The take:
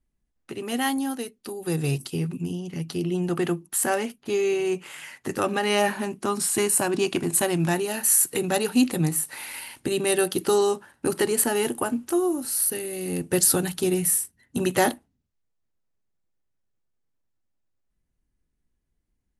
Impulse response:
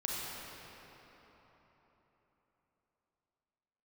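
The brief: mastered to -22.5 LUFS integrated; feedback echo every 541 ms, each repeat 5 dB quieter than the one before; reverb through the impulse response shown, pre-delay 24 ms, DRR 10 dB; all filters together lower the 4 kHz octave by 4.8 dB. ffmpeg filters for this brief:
-filter_complex "[0:a]equalizer=f=4000:t=o:g=-7,aecho=1:1:541|1082|1623|2164|2705|3246|3787:0.562|0.315|0.176|0.0988|0.0553|0.031|0.0173,asplit=2[s0][s1];[1:a]atrim=start_sample=2205,adelay=24[s2];[s1][s2]afir=irnorm=-1:irlink=0,volume=0.188[s3];[s0][s3]amix=inputs=2:normalize=0,volume=1.06"

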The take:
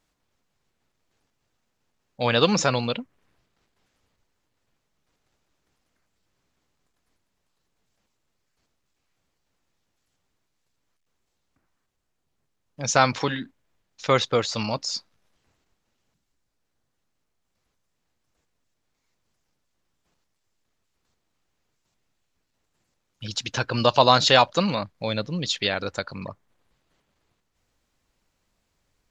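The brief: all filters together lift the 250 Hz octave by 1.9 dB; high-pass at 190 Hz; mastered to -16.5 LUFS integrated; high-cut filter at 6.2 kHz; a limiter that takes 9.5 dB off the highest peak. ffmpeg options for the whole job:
-af "highpass=190,lowpass=6200,equalizer=f=250:t=o:g=4.5,volume=2.99,alimiter=limit=0.841:level=0:latency=1"

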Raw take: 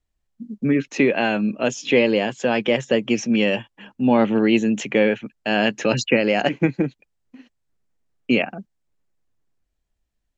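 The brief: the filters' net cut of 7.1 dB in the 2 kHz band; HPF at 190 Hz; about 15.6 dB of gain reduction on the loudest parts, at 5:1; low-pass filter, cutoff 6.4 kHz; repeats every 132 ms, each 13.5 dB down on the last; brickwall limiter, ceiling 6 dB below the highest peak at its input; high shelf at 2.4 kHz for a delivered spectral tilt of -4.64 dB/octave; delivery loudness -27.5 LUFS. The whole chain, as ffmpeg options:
-af "highpass=190,lowpass=6400,equalizer=f=2000:t=o:g=-5.5,highshelf=f=2400:g=-6.5,acompressor=threshold=0.0251:ratio=5,alimiter=level_in=1.19:limit=0.0631:level=0:latency=1,volume=0.841,aecho=1:1:132|264:0.211|0.0444,volume=2.99"

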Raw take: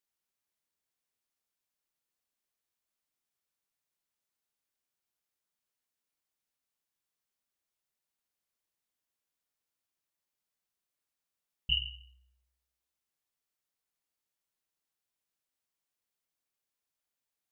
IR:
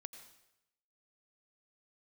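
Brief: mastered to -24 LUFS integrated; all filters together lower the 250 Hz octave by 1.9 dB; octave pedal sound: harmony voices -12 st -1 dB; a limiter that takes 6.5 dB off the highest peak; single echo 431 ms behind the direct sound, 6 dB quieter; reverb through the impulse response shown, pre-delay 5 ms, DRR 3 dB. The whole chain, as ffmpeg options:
-filter_complex "[0:a]equalizer=f=250:t=o:g=-5,alimiter=limit=0.075:level=0:latency=1,aecho=1:1:431:0.501,asplit=2[s0][s1];[1:a]atrim=start_sample=2205,adelay=5[s2];[s1][s2]afir=irnorm=-1:irlink=0,volume=1.26[s3];[s0][s3]amix=inputs=2:normalize=0,asplit=2[s4][s5];[s5]asetrate=22050,aresample=44100,atempo=2,volume=0.891[s6];[s4][s6]amix=inputs=2:normalize=0,volume=3.35"

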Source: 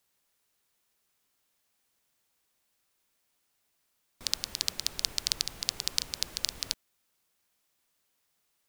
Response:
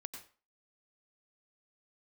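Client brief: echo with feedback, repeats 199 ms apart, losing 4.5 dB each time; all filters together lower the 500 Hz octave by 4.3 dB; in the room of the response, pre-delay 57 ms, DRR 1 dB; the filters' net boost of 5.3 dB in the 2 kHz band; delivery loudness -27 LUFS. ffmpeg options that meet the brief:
-filter_complex "[0:a]equalizer=f=500:t=o:g=-6,equalizer=f=2000:t=o:g=7,aecho=1:1:199|398|597|796|995|1194|1393|1592|1791:0.596|0.357|0.214|0.129|0.0772|0.0463|0.0278|0.0167|0.01,asplit=2[s0][s1];[1:a]atrim=start_sample=2205,adelay=57[s2];[s1][s2]afir=irnorm=-1:irlink=0,volume=1.26[s3];[s0][s3]amix=inputs=2:normalize=0"

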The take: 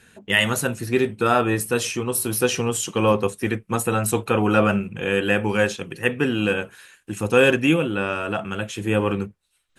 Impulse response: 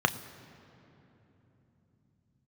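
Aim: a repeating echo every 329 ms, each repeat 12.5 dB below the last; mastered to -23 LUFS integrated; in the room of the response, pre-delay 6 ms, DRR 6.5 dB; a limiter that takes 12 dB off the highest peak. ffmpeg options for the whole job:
-filter_complex "[0:a]alimiter=limit=0.168:level=0:latency=1,aecho=1:1:329|658|987:0.237|0.0569|0.0137,asplit=2[s0][s1];[1:a]atrim=start_sample=2205,adelay=6[s2];[s1][s2]afir=irnorm=-1:irlink=0,volume=0.112[s3];[s0][s3]amix=inputs=2:normalize=0,volume=1.26"

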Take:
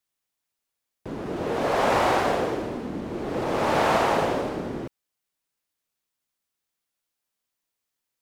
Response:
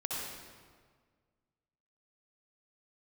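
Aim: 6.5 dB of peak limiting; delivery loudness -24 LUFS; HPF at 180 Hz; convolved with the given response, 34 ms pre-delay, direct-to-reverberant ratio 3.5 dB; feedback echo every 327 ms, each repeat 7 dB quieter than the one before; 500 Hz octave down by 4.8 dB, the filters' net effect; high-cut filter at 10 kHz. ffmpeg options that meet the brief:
-filter_complex "[0:a]highpass=180,lowpass=10000,equalizer=f=500:t=o:g=-6,alimiter=limit=0.119:level=0:latency=1,aecho=1:1:327|654|981|1308|1635:0.447|0.201|0.0905|0.0407|0.0183,asplit=2[s0][s1];[1:a]atrim=start_sample=2205,adelay=34[s2];[s1][s2]afir=irnorm=-1:irlink=0,volume=0.422[s3];[s0][s3]amix=inputs=2:normalize=0,volume=1.5"

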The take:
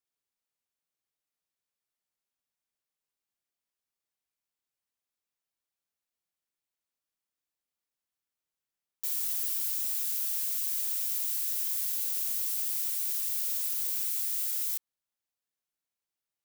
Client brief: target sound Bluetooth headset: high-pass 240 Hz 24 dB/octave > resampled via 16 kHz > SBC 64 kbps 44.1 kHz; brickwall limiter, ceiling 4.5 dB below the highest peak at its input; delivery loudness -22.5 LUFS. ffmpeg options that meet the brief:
-af "alimiter=limit=0.075:level=0:latency=1,highpass=f=240:w=0.5412,highpass=f=240:w=1.3066,aresample=16000,aresample=44100,volume=10.6" -ar 44100 -c:a sbc -b:a 64k

